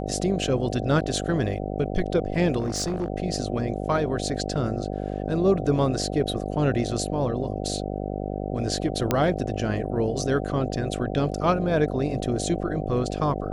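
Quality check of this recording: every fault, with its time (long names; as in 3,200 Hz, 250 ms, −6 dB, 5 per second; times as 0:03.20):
mains buzz 50 Hz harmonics 15 −30 dBFS
0:02.59–0:03.08: clipping −22.5 dBFS
0:09.11: click −7 dBFS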